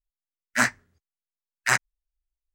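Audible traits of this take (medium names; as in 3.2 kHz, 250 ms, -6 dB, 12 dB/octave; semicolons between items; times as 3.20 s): noise floor -93 dBFS; spectral tilt -2.0 dB/octave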